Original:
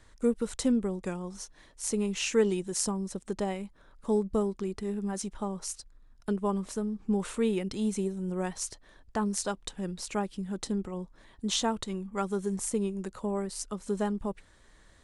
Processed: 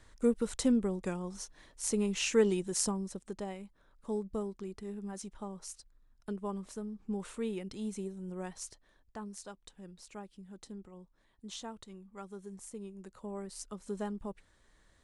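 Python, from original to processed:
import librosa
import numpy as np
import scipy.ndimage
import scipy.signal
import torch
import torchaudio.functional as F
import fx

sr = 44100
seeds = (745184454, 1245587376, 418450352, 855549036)

y = fx.gain(x, sr, db=fx.line((2.85, -1.5), (3.38, -8.5), (8.65, -8.5), (9.35, -15.0), (12.76, -15.0), (13.58, -7.5)))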